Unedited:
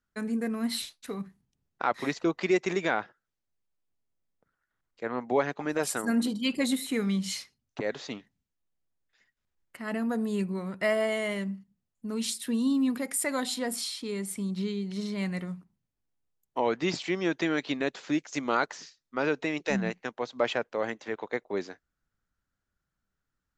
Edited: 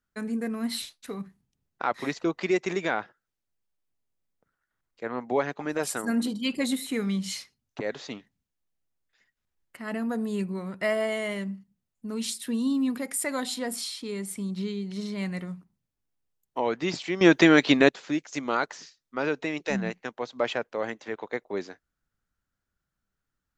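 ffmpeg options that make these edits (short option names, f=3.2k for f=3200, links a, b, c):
-filter_complex "[0:a]asplit=3[a][b][c];[a]atrim=end=17.212[d];[b]atrim=start=17.208:end=17.892,asetpts=PTS-STARTPTS,volume=11dB[e];[c]atrim=start=17.888[f];[d][e]acrossfade=d=0.004:c1=hsin:c2=hsin[g];[g][f]acrossfade=d=0.004:c1=hsin:c2=hsin"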